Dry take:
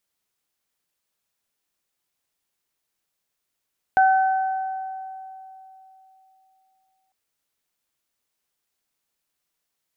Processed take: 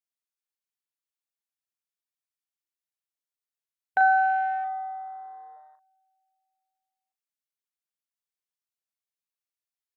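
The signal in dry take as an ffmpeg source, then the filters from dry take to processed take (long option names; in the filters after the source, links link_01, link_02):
-f lavfi -i "aevalsrc='0.237*pow(10,-3*t/3.26)*sin(2*PI*762*t)+0.106*pow(10,-3*t/1.85)*sin(2*PI*1524*t)':duration=3.15:sample_rate=44100"
-filter_complex "[0:a]afwtdn=0.0126,highpass=frequency=1100:poles=1,asplit=2[link_01][link_02];[link_02]adelay=38,volume=-8.5dB[link_03];[link_01][link_03]amix=inputs=2:normalize=0"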